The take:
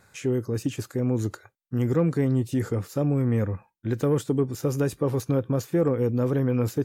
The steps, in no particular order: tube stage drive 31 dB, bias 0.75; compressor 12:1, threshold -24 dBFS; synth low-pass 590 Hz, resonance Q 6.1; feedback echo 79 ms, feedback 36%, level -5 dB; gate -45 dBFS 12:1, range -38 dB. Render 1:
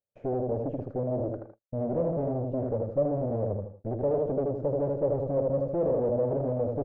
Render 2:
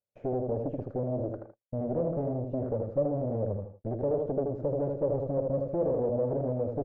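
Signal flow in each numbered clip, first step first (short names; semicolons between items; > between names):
feedback echo > gate > tube stage > compressor > synth low-pass; compressor > feedback echo > gate > tube stage > synth low-pass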